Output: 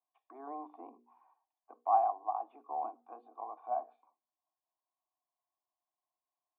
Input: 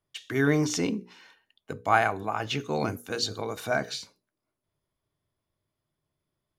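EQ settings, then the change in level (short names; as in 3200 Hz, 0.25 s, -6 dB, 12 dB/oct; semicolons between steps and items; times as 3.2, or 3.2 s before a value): dynamic EQ 1900 Hz, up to -7 dB, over -41 dBFS, Q 0.86; vocal tract filter a; rippled Chebyshev high-pass 230 Hz, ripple 9 dB; +6.0 dB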